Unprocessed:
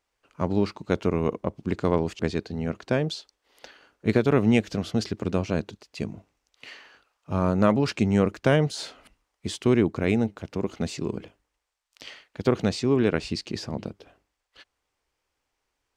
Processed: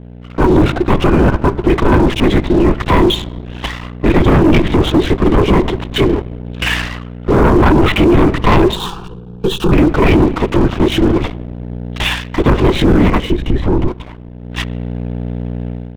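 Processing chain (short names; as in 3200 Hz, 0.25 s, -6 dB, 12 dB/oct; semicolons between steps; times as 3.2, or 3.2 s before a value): band inversion scrambler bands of 500 Hz; bell 350 Hz +4 dB 0.35 oct; LPC vocoder at 8 kHz whisper; in parallel at 0 dB: compressor, threshold -34 dBFS, peak gain reduction 19 dB; on the sum: hum 60 Hz, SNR 19 dB; on a send at -22.5 dB: reverb RT60 1.3 s, pre-delay 38 ms; on the sum: sample leveller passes 3; 8.76–9.72 fixed phaser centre 410 Hz, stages 8; 13.31–13.88 tilt -2.5 dB/oct; AGC gain up to 13 dB; limiter -8.5 dBFS, peak gain reduction 7.5 dB; gain +4 dB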